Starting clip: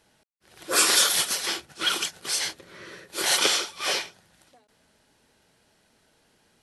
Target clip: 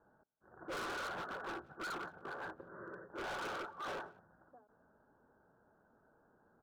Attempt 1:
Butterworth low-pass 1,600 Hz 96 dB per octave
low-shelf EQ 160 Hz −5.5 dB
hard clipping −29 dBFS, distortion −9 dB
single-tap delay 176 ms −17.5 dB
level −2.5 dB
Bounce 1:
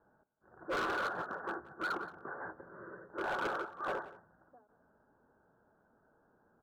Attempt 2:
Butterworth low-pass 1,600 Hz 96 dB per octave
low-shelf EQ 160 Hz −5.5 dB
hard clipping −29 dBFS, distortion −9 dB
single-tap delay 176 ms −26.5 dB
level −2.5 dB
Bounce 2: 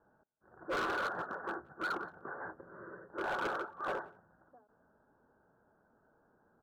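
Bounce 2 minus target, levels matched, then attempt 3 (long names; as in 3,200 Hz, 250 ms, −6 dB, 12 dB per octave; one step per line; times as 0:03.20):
hard clipping: distortion −5 dB
Butterworth low-pass 1,600 Hz 96 dB per octave
low-shelf EQ 160 Hz −5.5 dB
hard clipping −37.5 dBFS, distortion −3 dB
single-tap delay 176 ms −26.5 dB
level −2.5 dB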